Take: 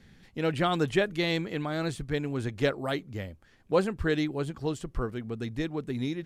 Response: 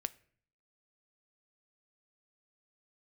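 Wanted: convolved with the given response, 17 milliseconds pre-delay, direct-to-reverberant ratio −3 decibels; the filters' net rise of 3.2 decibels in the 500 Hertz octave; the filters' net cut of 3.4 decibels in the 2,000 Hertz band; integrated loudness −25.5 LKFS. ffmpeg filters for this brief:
-filter_complex "[0:a]equalizer=frequency=500:width_type=o:gain=4,equalizer=frequency=2000:width_type=o:gain=-4.5,asplit=2[link_01][link_02];[1:a]atrim=start_sample=2205,adelay=17[link_03];[link_02][link_03]afir=irnorm=-1:irlink=0,volume=4dB[link_04];[link_01][link_04]amix=inputs=2:normalize=0,volume=-1.5dB"

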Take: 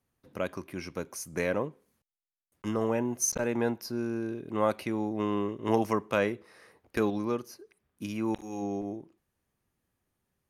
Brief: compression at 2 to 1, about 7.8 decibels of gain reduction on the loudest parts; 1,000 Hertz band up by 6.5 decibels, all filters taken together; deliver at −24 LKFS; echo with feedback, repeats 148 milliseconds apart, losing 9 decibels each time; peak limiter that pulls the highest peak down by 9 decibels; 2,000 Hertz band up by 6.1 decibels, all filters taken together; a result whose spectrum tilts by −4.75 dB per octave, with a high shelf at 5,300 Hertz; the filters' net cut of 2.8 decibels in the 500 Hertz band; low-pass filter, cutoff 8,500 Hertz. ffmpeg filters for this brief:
ffmpeg -i in.wav -af "lowpass=8500,equalizer=frequency=500:width_type=o:gain=-5.5,equalizer=frequency=1000:width_type=o:gain=8,equalizer=frequency=2000:width_type=o:gain=6.5,highshelf=frequency=5300:gain=-8.5,acompressor=threshold=-33dB:ratio=2,alimiter=limit=-23.5dB:level=0:latency=1,aecho=1:1:148|296|444|592:0.355|0.124|0.0435|0.0152,volume=13dB" out.wav

